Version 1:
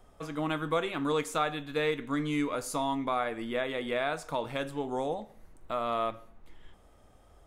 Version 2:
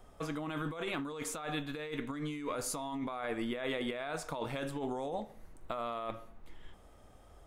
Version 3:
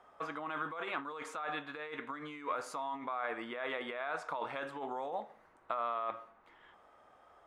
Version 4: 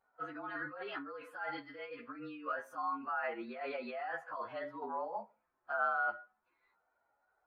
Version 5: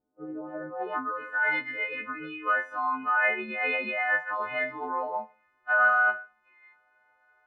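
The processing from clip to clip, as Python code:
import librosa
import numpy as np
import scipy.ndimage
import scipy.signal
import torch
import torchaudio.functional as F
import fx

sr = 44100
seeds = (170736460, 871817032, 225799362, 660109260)

y1 = fx.over_compress(x, sr, threshold_db=-35.0, ratio=-1.0)
y1 = y1 * 10.0 ** (-2.5 / 20.0)
y2 = fx.bandpass_q(y1, sr, hz=1200.0, q=1.2)
y2 = y2 * 10.0 ** (5.0 / 20.0)
y3 = fx.partial_stretch(y2, sr, pct=109)
y3 = fx.spectral_expand(y3, sr, expansion=1.5)
y3 = y3 * 10.0 ** (4.5 / 20.0)
y4 = fx.freq_snap(y3, sr, grid_st=3)
y4 = fx.filter_sweep_lowpass(y4, sr, from_hz=290.0, to_hz=2200.0, start_s=0.1, end_s=1.53, q=3.5)
y4 = y4 * 10.0 ** (6.5 / 20.0)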